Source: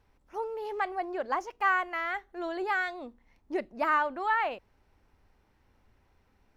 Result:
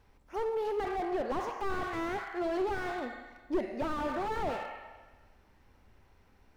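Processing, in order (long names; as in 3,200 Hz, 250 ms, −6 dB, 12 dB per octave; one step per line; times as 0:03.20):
four-comb reverb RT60 1.3 s, combs from 32 ms, DRR 9.5 dB
slew-rate limiting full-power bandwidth 13 Hz
level +3.5 dB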